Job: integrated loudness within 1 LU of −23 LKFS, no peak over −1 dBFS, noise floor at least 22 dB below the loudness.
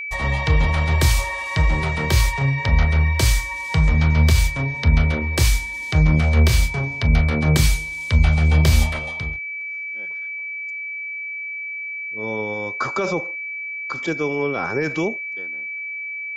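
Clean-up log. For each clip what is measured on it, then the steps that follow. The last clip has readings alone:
interfering tone 2,300 Hz; level of the tone −27 dBFS; integrated loudness −20.5 LKFS; sample peak −4.5 dBFS; target loudness −23.0 LKFS
→ notch filter 2,300 Hz, Q 30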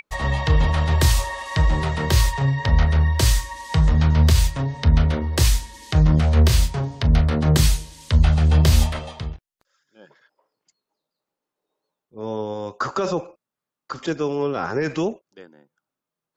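interfering tone none found; integrated loudness −20.5 LKFS; sample peak −5.0 dBFS; target loudness −23.0 LKFS
→ level −2.5 dB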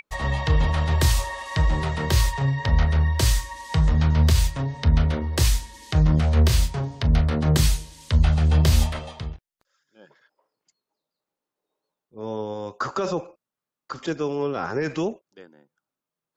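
integrated loudness −23.0 LKFS; sample peak −7.5 dBFS; background noise floor −89 dBFS

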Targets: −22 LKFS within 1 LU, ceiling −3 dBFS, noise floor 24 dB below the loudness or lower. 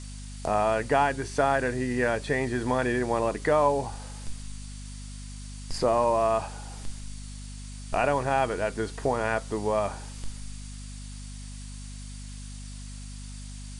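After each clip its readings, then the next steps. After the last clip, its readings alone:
mains hum 50 Hz; hum harmonics up to 250 Hz; level of the hum −37 dBFS; background noise floor −40 dBFS; target noise floor −51 dBFS; integrated loudness −26.5 LKFS; sample peak −10.0 dBFS; target loudness −22.0 LKFS
→ hum removal 50 Hz, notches 5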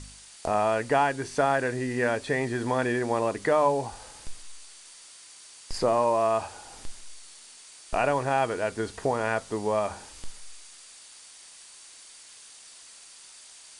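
mains hum none found; background noise floor −50 dBFS; target noise floor −51 dBFS
→ broadband denoise 6 dB, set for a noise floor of −50 dBFS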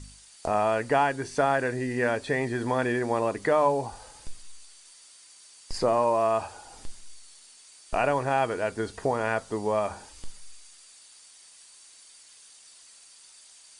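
background noise floor −53 dBFS; integrated loudness −26.5 LKFS; sample peak −10.5 dBFS; target loudness −22.0 LKFS
→ level +4.5 dB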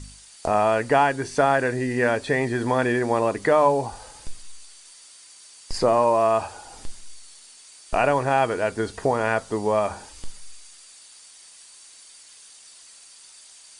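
integrated loudness −22.0 LKFS; sample peak −6.0 dBFS; background noise floor −49 dBFS

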